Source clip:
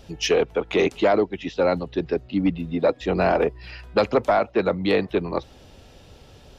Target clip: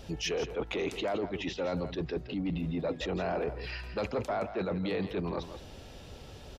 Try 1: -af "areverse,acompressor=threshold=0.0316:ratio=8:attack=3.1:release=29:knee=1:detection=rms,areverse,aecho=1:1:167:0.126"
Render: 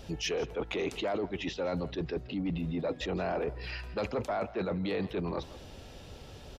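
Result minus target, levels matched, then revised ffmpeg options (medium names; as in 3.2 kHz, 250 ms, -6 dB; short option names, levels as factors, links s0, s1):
echo-to-direct -6.5 dB
-af "areverse,acompressor=threshold=0.0316:ratio=8:attack=3.1:release=29:knee=1:detection=rms,areverse,aecho=1:1:167:0.266"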